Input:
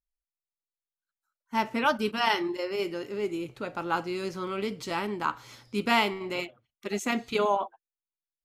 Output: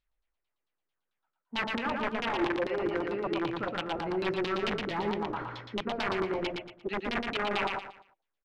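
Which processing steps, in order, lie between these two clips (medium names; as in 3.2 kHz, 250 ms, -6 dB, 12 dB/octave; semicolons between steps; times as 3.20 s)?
low-pass that closes with the level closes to 1.4 kHz, closed at -23 dBFS; reverse; compression 5:1, threshold -40 dBFS, peak gain reduction 17.5 dB; reverse; integer overflow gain 35 dB; LFO low-pass saw down 4.5 Hz 330–3900 Hz; on a send: feedback delay 116 ms, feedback 30%, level -3.5 dB; on the sum: trim +8 dB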